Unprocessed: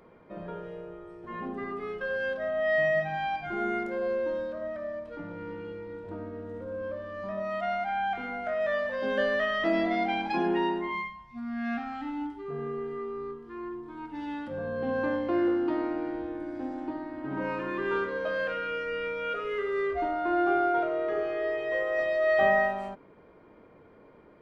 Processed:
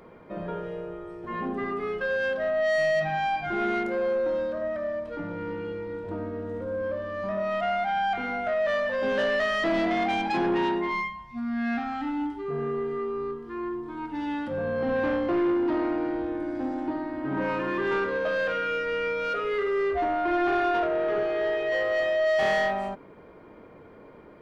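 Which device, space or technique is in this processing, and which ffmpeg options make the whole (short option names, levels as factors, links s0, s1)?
saturation between pre-emphasis and de-emphasis: -af "highshelf=f=3900:g=9.5,asoftclip=type=tanh:threshold=0.0473,highshelf=f=3900:g=-9.5,volume=2"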